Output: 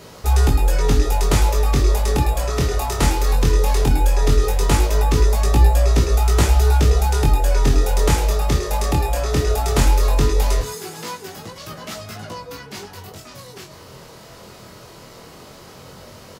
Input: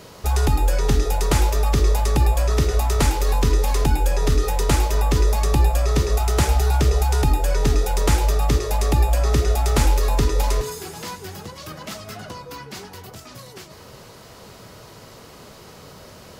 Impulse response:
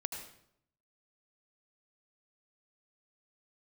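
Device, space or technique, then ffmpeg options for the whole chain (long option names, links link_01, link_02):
double-tracked vocal: -filter_complex "[0:a]asettb=1/sr,asplit=3[link_01][link_02][link_03];[link_01]atrim=end=10.724[link_04];[link_02]atrim=start=10.72:end=11.37,asetpts=PTS-STARTPTS,afade=type=in:duration=0.004:curve=qsin,afade=type=out:start_time=0.646:duration=0.004:curve=qsin,highpass=150[link_05];[link_03]atrim=start=11.366[link_06];[link_04][link_05]acrossfade=duration=0.004:curve1=hsin:curve2=qsin[link_07];[link_07][link_06]acrossfade=duration=0.004:curve1=qsin:curve2=hsin,asplit=2[link_08][link_09];[link_09]adelay=30,volume=-13dB[link_10];[link_08][link_10]amix=inputs=2:normalize=0,flanger=delay=17.5:depth=6.9:speed=0.17,volume=4.5dB"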